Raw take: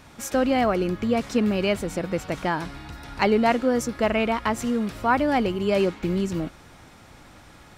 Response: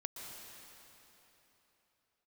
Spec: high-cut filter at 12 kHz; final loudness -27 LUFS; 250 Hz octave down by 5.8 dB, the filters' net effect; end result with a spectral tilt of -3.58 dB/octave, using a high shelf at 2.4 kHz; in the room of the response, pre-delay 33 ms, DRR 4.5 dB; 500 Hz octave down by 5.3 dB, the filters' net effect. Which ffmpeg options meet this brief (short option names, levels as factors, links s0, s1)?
-filter_complex "[0:a]lowpass=12000,equalizer=f=250:t=o:g=-6,equalizer=f=500:t=o:g=-5.5,highshelf=f=2400:g=6.5,asplit=2[s0][s1];[1:a]atrim=start_sample=2205,adelay=33[s2];[s1][s2]afir=irnorm=-1:irlink=0,volume=0.668[s3];[s0][s3]amix=inputs=2:normalize=0,volume=0.841"